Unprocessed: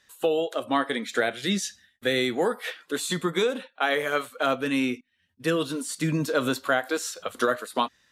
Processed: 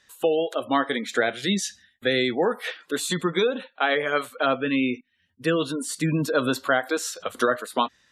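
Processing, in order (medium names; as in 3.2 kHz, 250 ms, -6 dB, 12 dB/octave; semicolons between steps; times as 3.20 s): spectral gate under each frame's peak -30 dB strong; trim +2 dB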